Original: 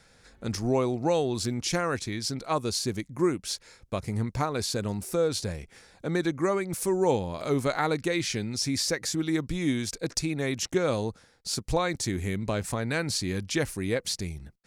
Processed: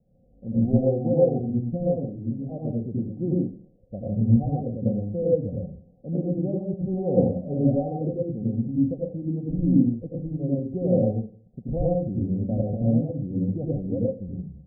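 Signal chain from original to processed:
Chebyshev low-pass with heavy ripple 770 Hz, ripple 9 dB
low-shelf EQ 430 Hz +9.5 dB
convolution reverb RT60 0.45 s, pre-delay 78 ms, DRR −4.5 dB
expander for the loud parts 1.5 to 1, over −28 dBFS

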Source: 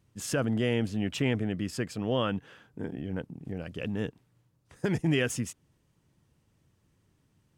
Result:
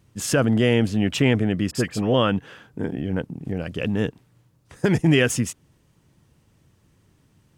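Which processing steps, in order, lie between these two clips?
0:01.71–0:02.14: all-pass dispersion highs, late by 41 ms, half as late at 1,900 Hz
level +9 dB

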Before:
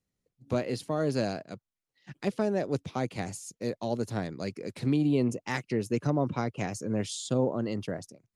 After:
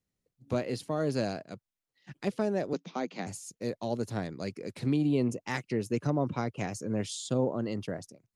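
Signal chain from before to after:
0:02.73–0:03.27: Chebyshev band-pass filter 170–6,600 Hz, order 5
level −1.5 dB

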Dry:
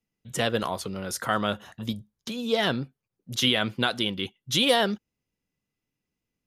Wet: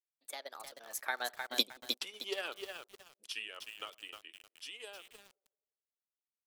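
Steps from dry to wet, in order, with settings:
source passing by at 0:01.64, 55 m/s, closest 4.9 metres
Bessel high-pass filter 580 Hz, order 6
parametric band 12,000 Hz +4 dB 1.3 octaves
transient designer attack +6 dB, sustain −9 dB
tape delay 86 ms, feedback 72%, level −23.5 dB, low-pass 1,100 Hz
feedback echo at a low word length 309 ms, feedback 35%, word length 9 bits, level −5 dB
level +4 dB

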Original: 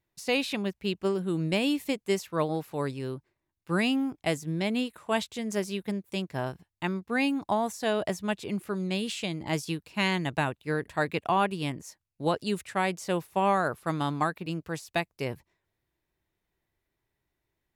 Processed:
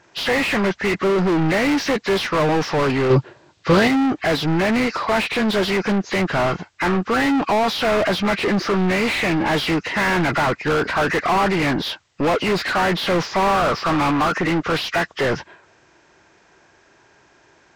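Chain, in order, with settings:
hearing-aid frequency compression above 1,100 Hz 1.5 to 1
mid-hump overdrive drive 38 dB, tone 1,800 Hz, clips at −14.5 dBFS
0:03.10–0:03.88: octave-band graphic EQ 125/500/4,000 Hz +11/+7/+6 dB
level +3.5 dB

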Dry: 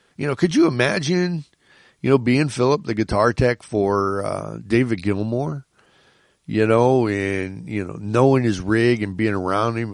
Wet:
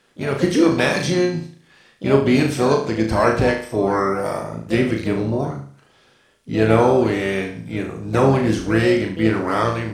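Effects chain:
flutter between parallel walls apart 6.2 metres, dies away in 0.48 s
pitch-shifted copies added −7 semitones −17 dB, +7 semitones −10 dB
level −1.5 dB

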